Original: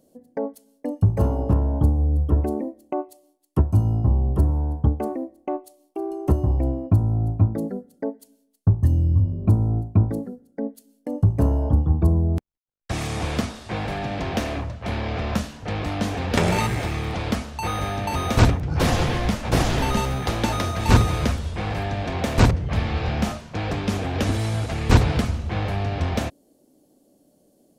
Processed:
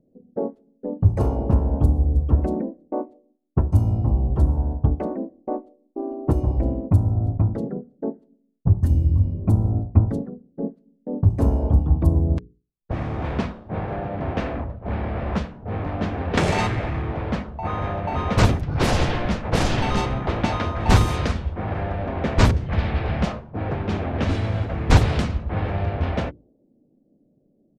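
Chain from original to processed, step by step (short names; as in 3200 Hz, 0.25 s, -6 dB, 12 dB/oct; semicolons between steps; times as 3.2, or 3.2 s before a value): notches 60/120/180/240/300/360/420/480 Hz; low-pass opened by the level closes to 380 Hz, open at -15 dBFS; harmoniser -5 st -8 dB, -3 st -4 dB; gain -1 dB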